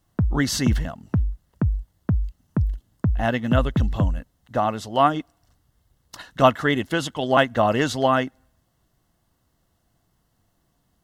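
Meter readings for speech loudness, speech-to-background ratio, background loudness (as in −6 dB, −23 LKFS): −23.0 LKFS, 3.5 dB, −26.5 LKFS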